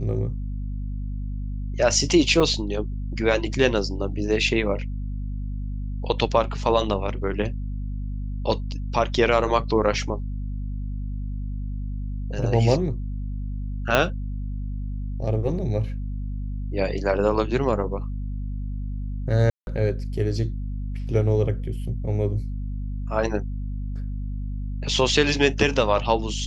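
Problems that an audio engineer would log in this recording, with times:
hum 50 Hz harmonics 5 -29 dBFS
2.4–2.41 gap 5.6 ms
13.95 pop -4 dBFS
19.5–19.67 gap 0.171 s

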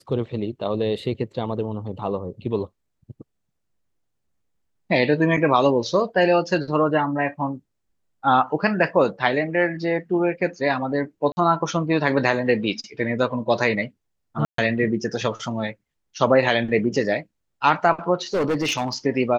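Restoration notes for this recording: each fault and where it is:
11.32–11.37 gap 50 ms
14.45–14.58 gap 0.133 s
18.34–18.93 clipped -18 dBFS

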